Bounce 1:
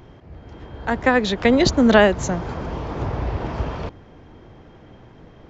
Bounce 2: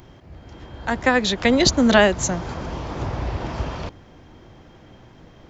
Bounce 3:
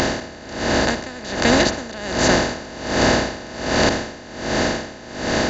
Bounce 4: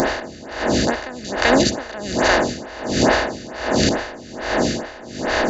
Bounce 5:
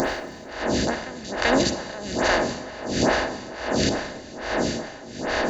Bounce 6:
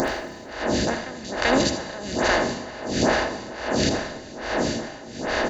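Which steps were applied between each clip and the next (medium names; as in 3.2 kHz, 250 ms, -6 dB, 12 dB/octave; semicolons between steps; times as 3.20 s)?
treble shelf 4.1 kHz +11.5 dB; band-stop 440 Hz, Q 12; trim -1.5 dB
spectral levelling over time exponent 0.2; logarithmic tremolo 1.3 Hz, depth 20 dB; trim -4 dB
lamp-driven phase shifter 2.3 Hz; trim +3.5 dB
Schroeder reverb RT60 1.5 s, combs from 31 ms, DRR 11 dB; trim -5 dB
delay 79 ms -11 dB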